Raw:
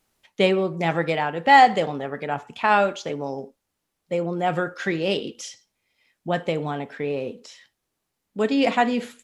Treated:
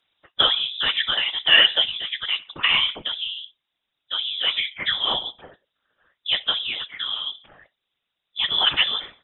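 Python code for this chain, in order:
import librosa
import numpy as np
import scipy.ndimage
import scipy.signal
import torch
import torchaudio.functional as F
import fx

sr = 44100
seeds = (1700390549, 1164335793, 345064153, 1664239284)

y = fx.freq_invert(x, sr, carrier_hz=3700)
y = fx.hpss(y, sr, part='percussive', gain_db=6)
y = fx.whisperise(y, sr, seeds[0])
y = y * librosa.db_to_amplitude(-2.5)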